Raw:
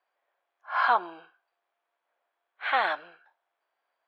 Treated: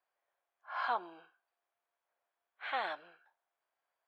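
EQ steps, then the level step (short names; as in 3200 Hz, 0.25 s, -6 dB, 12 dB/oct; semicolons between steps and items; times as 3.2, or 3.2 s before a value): dynamic EQ 1400 Hz, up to -5 dB, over -36 dBFS, Q 0.74; -7.5 dB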